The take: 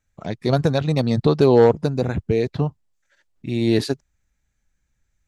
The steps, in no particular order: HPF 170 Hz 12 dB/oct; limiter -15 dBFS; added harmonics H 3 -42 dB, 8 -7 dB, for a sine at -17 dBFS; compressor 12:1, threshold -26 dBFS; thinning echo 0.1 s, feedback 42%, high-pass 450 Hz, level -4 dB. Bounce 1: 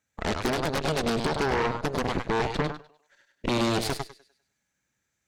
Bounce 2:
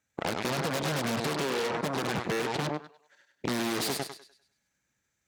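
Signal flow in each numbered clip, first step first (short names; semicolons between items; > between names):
HPF > compressor > thinning echo > added harmonics > limiter; limiter > thinning echo > added harmonics > HPF > compressor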